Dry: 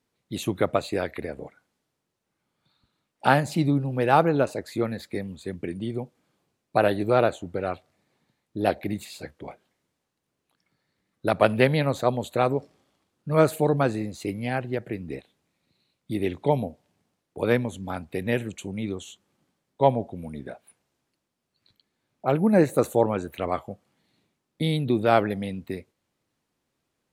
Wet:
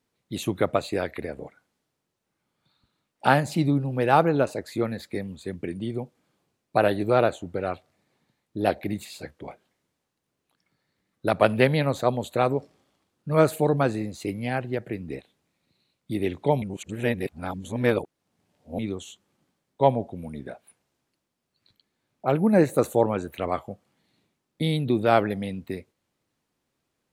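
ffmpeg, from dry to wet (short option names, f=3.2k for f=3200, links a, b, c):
-filter_complex "[0:a]asplit=3[a][b][c];[a]atrim=end=16.622[d];[b]atrim=start=16.618:end=18.792,asetpts=PTS-STARTPTS,areverse[e];[c]atrim=start=18.788[f];[d][e]acrossfade=d=0.004:c1=hsin:c2=hsin[g];[g][f]acrossfade=d=0.004:c1=hsin:c2=hsin"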